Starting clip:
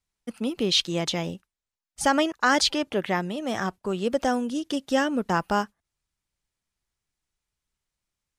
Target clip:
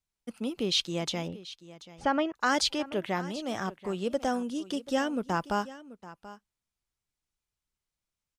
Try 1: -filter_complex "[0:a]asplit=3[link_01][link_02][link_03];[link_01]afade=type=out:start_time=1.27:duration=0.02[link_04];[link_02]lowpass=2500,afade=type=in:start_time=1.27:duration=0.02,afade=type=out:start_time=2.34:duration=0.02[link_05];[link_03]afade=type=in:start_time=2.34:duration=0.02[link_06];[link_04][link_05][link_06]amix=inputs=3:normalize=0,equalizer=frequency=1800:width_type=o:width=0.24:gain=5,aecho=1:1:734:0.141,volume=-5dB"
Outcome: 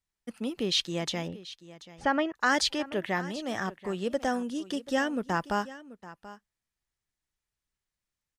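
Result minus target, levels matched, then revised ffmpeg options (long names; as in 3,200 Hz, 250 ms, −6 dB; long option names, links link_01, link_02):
2,000 Hz band +3.0 dB
-filter_complex "[0:a]asplit=3[link_01][link_02][link_03];[link_01]afade=type=out:start_time=1.27:duration=0.02[link_04];[link_02]lowpass=2500,afade=type=in:start_time=1.27:duration=0.02,afade=type=out:start_time=2.34:duration=0.02[link_05];[link_03]afade=type=in:start_time=2.34:duration=0.02[link_06];[link_04][link_05][link_06]amix=inputs=3:normalize=0,equalizer=frequency=1800:width_type=o:width=0.24:gain=-3.5,aecho=1:1:734:0.141,volume=-5dB"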